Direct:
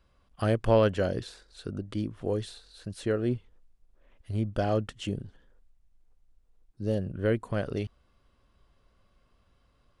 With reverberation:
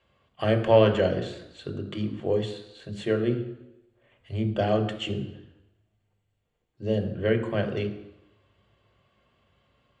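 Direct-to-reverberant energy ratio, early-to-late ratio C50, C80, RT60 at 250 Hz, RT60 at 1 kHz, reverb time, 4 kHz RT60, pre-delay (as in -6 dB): 4.0 dB, 10.5 dB, 12.5 dB, 0.90 s, 0.90 s, 0.90 s, 0.90 s, 3 ms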